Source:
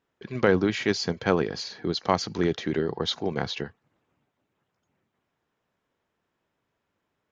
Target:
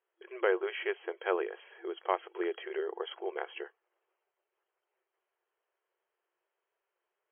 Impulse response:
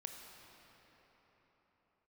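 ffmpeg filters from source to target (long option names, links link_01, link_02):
-af "afftfilt=real='re*between(b*sr/4096,340,3300)':imag='im*between(b*sr/4096,340,3300)':win_size=4096:overlap=0.75,volume=-6.5dB"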